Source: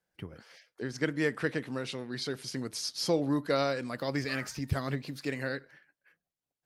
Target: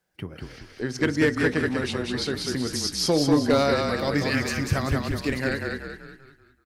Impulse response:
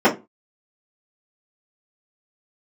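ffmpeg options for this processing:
-filter_complex "[0:a]asplit=7[a][b][c][d][e][f][g];[b]adelay=192,afreqshift=-32,volume=-3.5dB[h];[c]adelay=384,afreqshift=-64,volume=-10.6dB[i];[d]adelay=576,afreqshift=-96,volume=-17.8dB[j];[e]adelay=768,afreqshift=-128,volume=-24.9dB[k];[f]adelay=960,afreqshift=-160,volume=-32dB[l];[g]adelay=1152,afreqshift=-192,volume=-39.2dB[m];[a][h][i][j][k][l][m]amix=inputs=7:normalize=0,asplit=2[n][o];[1:a]atrim=start_sample=2205[p];[o][p]afir=irnorm=-1:irlink=0,volume=-38.5dB[q];[n][q]amix=inputs=2:normalize=0,volume=19.5dB,asoftclip=hard,volume=-19.5dB,volume=7dB"

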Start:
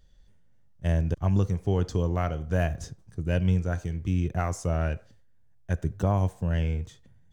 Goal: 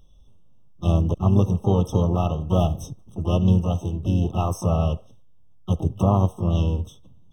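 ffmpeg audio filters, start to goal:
-filter_complex "[0:a]asplit=3[a][b][c];[b]asetrate=52444,aresample=44100,atempo=0.840896,volume=-7dB[d];[c]asetrate=88200,aresample=44100,atempo=0.5,volume=-10dB[e];[a][d][e]amix=inputs=3:normalize=0,afftfilt=real='re*eq(mod(floor(b*sr/1024/1300),2),0)':imag='im*eq(mod(floor(b*sr/1024/1300),2),0)':win_size=1024:overlap=0.75,volume=4dB"

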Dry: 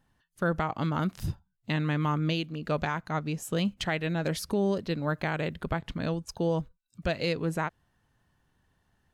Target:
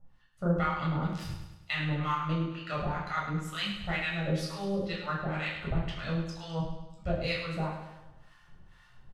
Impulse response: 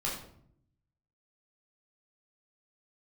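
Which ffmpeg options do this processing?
-filter_complex "[0:a]aemphasis=mode=reproduction:type=bsi,areverse,acompressor=mode=upward:threshold=-36dB:ratio=2.5,areverse,tiltshelf=f=640:g=-10,asplit=2[a][b];[b]asoftclip=type=tanh:threshold=-26.5dB,volume=-12dB[c];[a][c]amix=inputs=2:normalize=0,acrossover=split=830[d][e];[d]aeval=exprs='val(0)*(1-1/2+1/2*cos(2*PI*2.1*n/s))':c=same[f];[e]aeval=exprs='val(0)*(1-1/2-1/2*cos(2*PI*2.1*n/s))':c=same[g];[f][g]amix=inputs=2:normalize=0,aecho=1:1:103|206|309|412|515|618:0.398|0.203|0.104|0.0528|0.0269|0.0137[h];[1:a]atrim=start_sample=2205,atrim=end_sample=3969[i];[h][i]afir=irnorm=-1:irlink=0,volume=-6dB"

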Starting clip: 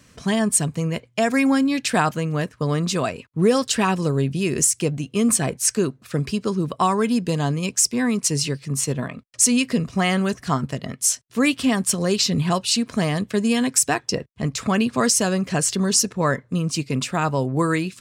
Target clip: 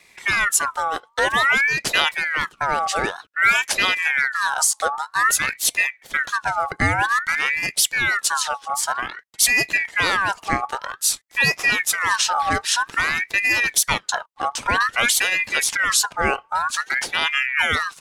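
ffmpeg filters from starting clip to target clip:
-af "aeval=exprs='val(0)*sin(2*PI*1600*n/s+1600*0.4/0.52*sin(2*PI*0.52*n/s))':c=same,volume=3dB"

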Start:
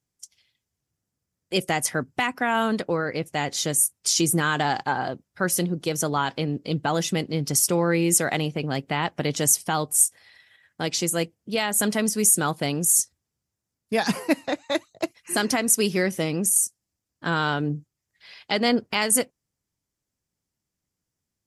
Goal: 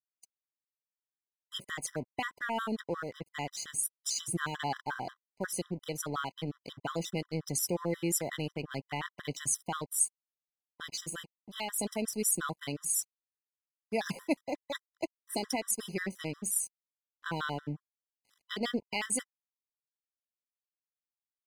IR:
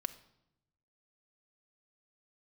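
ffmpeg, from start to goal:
-af "aeval=exprs='sgn(val(0))*max(abs(val(0))-0.00891,0)':c=same,afftfilt=real='re*gt(sin(2*PI*5.6*pts/sr)*(1-2*mod(floor(b*sr/1024/1000),2)),0)':imag='im*gt(sin(2*PI*5.6*pts/sr)*(1-2*mod(floor(b*sr/1024/1000),2)),0)':win_size=1024:overlap=0.75,volume=-7.5dB"

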